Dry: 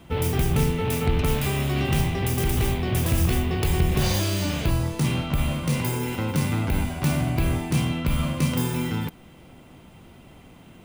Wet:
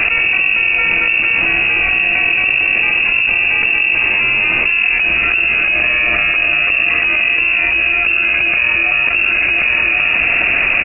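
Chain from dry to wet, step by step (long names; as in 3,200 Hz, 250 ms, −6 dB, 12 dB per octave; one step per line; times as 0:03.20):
voice inversion scrambler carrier 2,700 Hz
single-tap delay 1,081 ms −16.5 dB
envelope flattener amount 100%
level +2 dB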